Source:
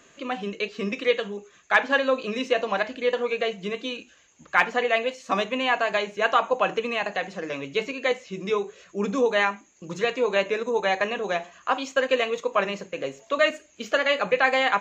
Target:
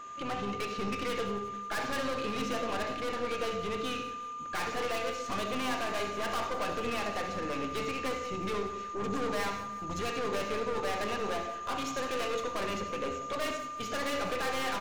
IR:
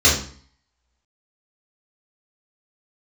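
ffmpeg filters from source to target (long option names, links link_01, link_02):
-filter_complex "[0:a]asplit=3[link_01][link_02][link_03];[link_02]asetrate=22050,aresample=44100,atempo=2,volume=-12dB[link_04];[link_03]asetrate=29433,aresample=44100,atempo=1.49831,volume=-17dB[link_05];[link_01][link_04][link_05]amix=inputs=3:normalize=0,aeval=exprs='(tanh(44.7*val(0)+0.45)-tanh(0.45))/44.7':channel_layout=same,aeval=exprs='val(0)+0.00794*sin(2*PI*1200*n/s)':channel_layout=same,aecho=1:1:180|360|540|720|900:0.168|0.089|0.0472|0.025|0.0132,asplit=2[link_06][link_07];[1:a]atrim=start_sample=2205,adelay=62[link_08];[link_07][link_08]afir=irnorm=-1:irlink=0,volume=-28.5dB[link_09];[link_06][link_09]amix=inputs=2:normalize=0"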